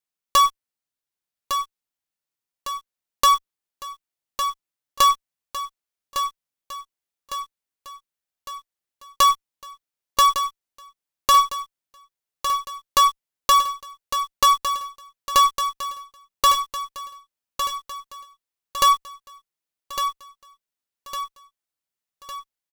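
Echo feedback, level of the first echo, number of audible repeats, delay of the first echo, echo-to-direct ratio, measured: 53%, -8.5 dB, 5, 1156 ms, -7.0 dB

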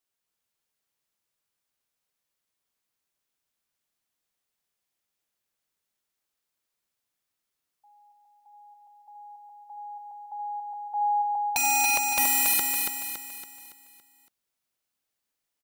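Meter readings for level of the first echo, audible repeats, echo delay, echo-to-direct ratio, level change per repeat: -3.5 dB, 5, 281 ms, -2.5 dB, -6.5 dB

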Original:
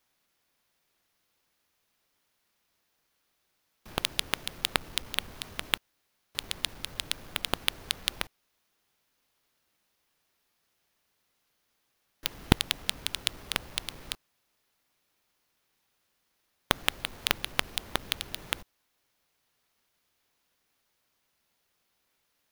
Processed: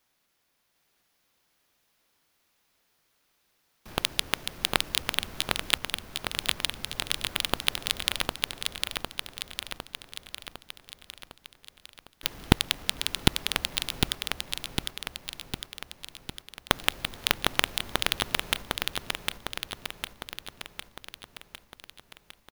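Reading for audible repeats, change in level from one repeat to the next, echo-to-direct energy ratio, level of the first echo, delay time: 7, -4.5 dB, -1.0 dB, -3.0 dB, 755 ms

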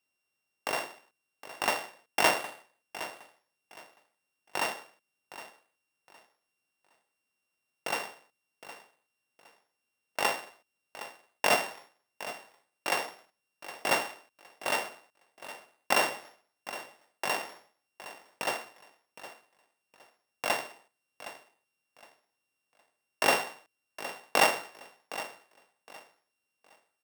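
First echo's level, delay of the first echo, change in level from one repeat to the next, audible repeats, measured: -14.5 dB, 764 ms, -12.0 dB, 2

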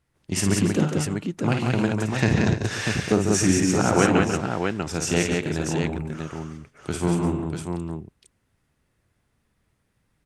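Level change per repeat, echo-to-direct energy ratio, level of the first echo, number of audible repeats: no regular repeats, 1.0 dB, -6.0 dB, 5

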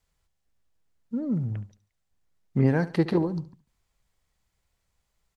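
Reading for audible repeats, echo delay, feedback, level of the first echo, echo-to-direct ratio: 3, 71 ms, 37%, -17.0 dB, -16.5 dB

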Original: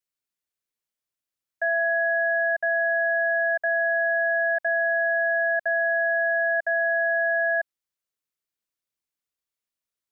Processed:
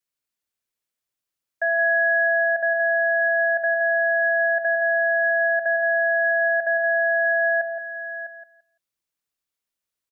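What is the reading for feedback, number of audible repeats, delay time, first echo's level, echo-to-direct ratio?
no regular repeats, 4, 170 ms, -8.0 dB, -6.5 dB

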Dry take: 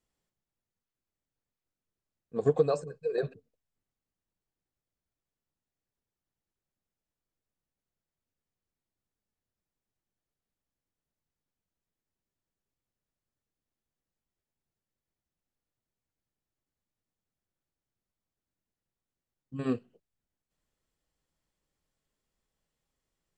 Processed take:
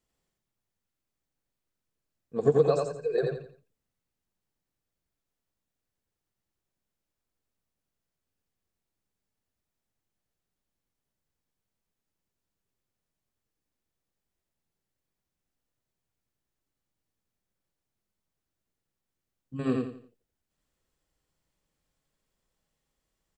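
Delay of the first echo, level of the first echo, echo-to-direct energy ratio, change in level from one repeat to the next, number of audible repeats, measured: 86 ms, -3.0 dB, -2.5 dB, -10.0 dB, 4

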